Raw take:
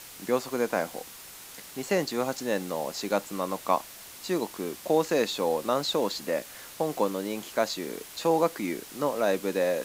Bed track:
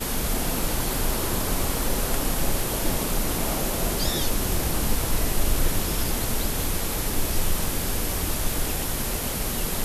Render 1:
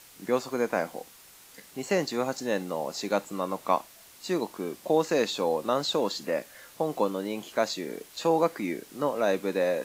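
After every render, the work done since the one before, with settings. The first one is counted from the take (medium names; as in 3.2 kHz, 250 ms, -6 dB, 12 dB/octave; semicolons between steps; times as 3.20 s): noise print and reduce 7 dB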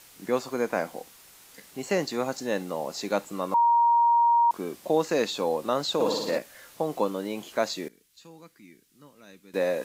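3.54–4.51 s: bleep 940 Hz -17 dBFS; 5.94–6.38 s: flutter echo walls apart 9.9 m, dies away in 1 s; 7.88–9.54 s: amplifier tone stack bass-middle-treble 6-0-2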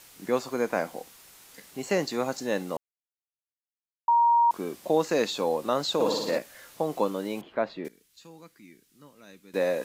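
2.77–4.08 s: mute; 7.41–7.85 s: distance through air 440 m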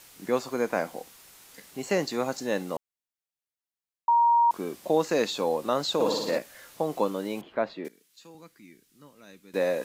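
7.74–8.35 s: high-pass 180 Hz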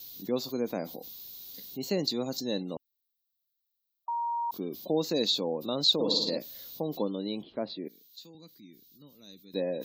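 spectral gate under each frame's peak -30 dB strong; FFT filter 280 Hz 0 dB, 1.6 kHz -16 dB, 2.6 kHz -8 dB, 3.9 kHz +9 dB, 6.7 kHz -1 dB, 9.7 kHz -17 dB, 14 kHz +15 dB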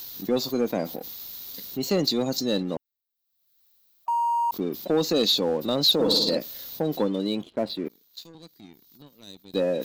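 waveshaping leveller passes 2; upward compressor, threshold -43 dBFS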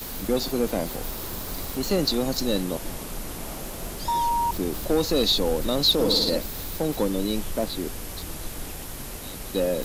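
add bed track -9 dB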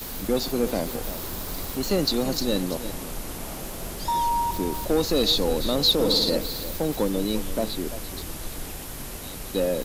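delay 340 ms -13 dB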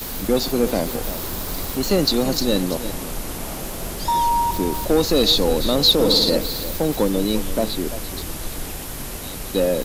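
trim +5 dB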